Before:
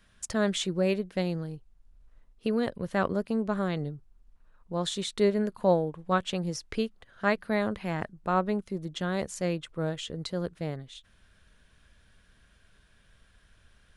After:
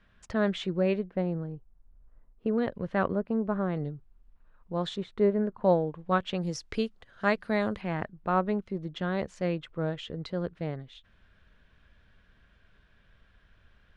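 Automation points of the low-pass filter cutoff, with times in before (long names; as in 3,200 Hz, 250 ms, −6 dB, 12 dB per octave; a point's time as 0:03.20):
2,700 Hz
from 0:01.09 1,300 Hz
from 0:02.58 2,600 Hz
from 0:03.15 1,500 Hz
from 0:03.76 3,100 Hz
from 0:04.96 1,400 Hz
from 0:05.64 3,400 Hz
from 0:06.41 7,100 Hz
from 0:07.81 3,100 Hz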